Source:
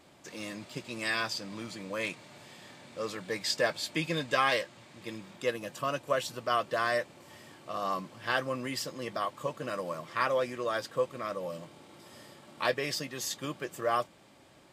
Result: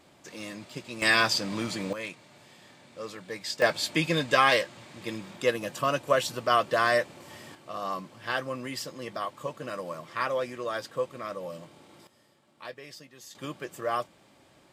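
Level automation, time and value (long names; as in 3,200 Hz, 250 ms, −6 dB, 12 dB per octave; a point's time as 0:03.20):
+0.5 dB
from 0:01.02 +9 dB
from 0:01.93 −3 dB
from 0:03.62 +5.5 dB
from 0:07.55 −0.5 dB
from 0:12.07 −12.5 dB
from 0:13.35 −0.5 dB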